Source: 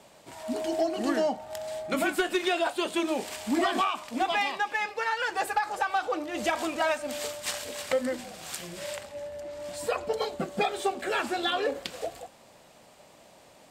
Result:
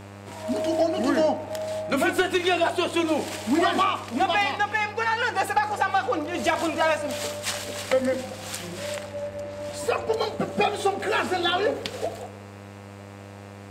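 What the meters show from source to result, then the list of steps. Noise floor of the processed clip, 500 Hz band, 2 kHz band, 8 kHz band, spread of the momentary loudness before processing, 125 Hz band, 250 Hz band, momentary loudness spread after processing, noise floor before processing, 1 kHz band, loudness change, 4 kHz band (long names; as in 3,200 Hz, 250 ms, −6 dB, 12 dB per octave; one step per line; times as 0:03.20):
−42 dBFS, +5.0 dB, +4.5 dB, +3.0 dB, 11 LU, +11.5 dB, +5.0 dB, 16 LU, −55 dBFS, +4.5 dB, +4.5 dB, +4.0 dB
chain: high-shelf EQ 9,400 Hz −4.5 dB
hum with harmonics 100 Hz, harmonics 28, −47 dBFS −5 dB per octave
on a send: feedback echo with a band-pass in the loop 76 ms, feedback 71%, band-pass 470 Hz, level −13 dB
on the sum: level +4.5 dB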